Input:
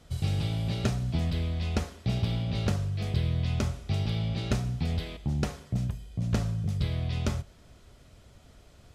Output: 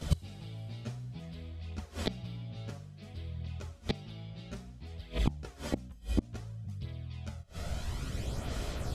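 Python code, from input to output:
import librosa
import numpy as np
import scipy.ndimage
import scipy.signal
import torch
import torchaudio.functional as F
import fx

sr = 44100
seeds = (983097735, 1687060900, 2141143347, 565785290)

y = fx.gate_flip(x, sr, shuts_db=-29.0, range_db=-30)
y = fx.chorus_voices(y, sr, voices=2, hz=0.29, base_ms=13, depth_ms=4.2, mix_pct=70)
y = y * 10.0 ** (18.0 / 20.0)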